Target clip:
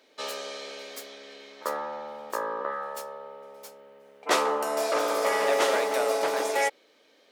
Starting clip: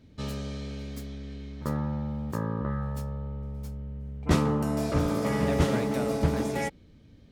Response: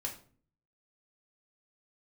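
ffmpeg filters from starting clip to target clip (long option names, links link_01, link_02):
-af "highpass=frequency=480:width=0.5412,highpass=frequency=480:width=1.3066,volume=7.5dB"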